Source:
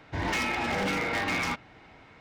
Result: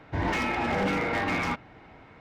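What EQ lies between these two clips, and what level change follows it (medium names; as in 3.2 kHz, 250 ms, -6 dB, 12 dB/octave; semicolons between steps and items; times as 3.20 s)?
treble shelf 2.7 kHz -11 dB; +3.5 dB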